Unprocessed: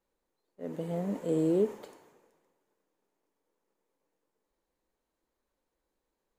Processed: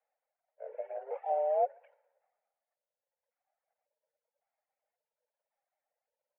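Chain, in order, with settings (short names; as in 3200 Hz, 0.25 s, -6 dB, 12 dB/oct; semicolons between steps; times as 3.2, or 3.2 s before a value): trilling pitch shifter -7.5 st, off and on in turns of 0.551 s; bell 880 Hz -12 dB 0.59 oct; mistuned SSB +280 Hz 200–2100 Hz; on a send: echo 0.143 s -21.5 dB; on the sum: reverb removal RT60 1.7 s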